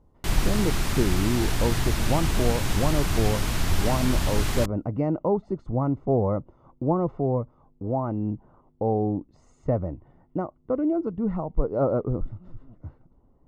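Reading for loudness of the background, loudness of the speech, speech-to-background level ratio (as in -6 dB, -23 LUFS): -27.5 LUFS, -27.5 LUFS, 0.0 dB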